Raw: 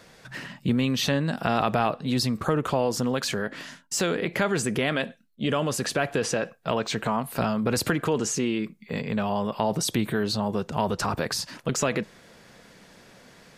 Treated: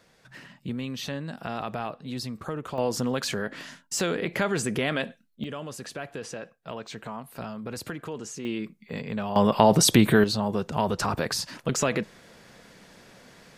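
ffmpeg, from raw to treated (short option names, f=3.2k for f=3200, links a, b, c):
-af "asetnsamples=n=441:p=0,asendcmd='2.78 volume volume -1.5dB;5.44 volume volume -11dB;8.45 volume volume -4dB;9.36 volume volume 7.5dB;10.24 volume volume 0dB',volume=-9dB"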